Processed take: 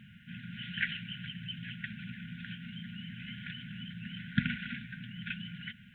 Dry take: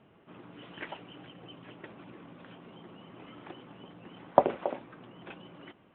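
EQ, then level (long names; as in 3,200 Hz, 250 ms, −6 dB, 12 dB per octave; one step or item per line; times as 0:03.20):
linear-phase brick-wall band-stop 240–1,400 Hz
+11.0 dB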